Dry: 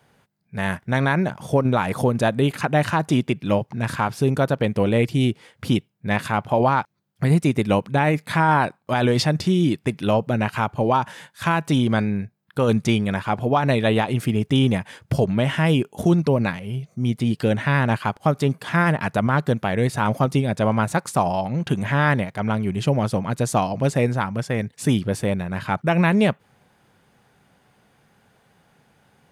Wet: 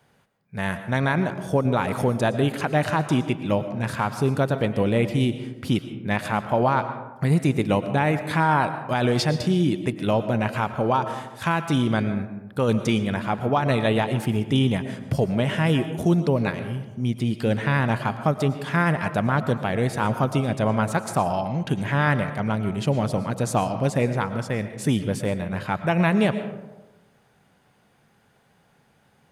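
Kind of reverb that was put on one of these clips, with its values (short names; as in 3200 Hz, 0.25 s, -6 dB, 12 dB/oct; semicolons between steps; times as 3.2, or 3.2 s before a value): digital reverb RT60 1.1 s, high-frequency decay 0.4×, pre-delay 75 ms, DRR 10 dB; gain -2.5 dB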